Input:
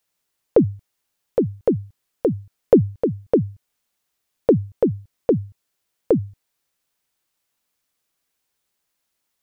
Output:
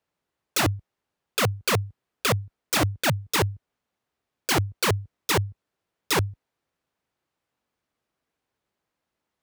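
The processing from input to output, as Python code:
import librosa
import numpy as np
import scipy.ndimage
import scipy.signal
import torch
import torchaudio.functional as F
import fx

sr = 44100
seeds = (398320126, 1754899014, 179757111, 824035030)

p1 = fx.rider(x, sr, range_db=4, speed_s=0.5)
p2 = x + F.gain(torch.from_numpy(p1), 0.5).numpy()
p3 = fx.lowpass(p2, sr, hz=1000.0, slope=6)
p4 = (np.mod(10.0 ** (14.0 / 20.0) * p3 + 1.0, 2.0) - 1.0) / 10.0 ** (14.0 / 20.0)
p5 = scipy.signal.sosfilt(scipy.signal.butter(2, 46.0, 'highpass', fs=sr, output='sos'), p4)
y = F.gain(torch.from_numpy(p5), -2.5).numpy()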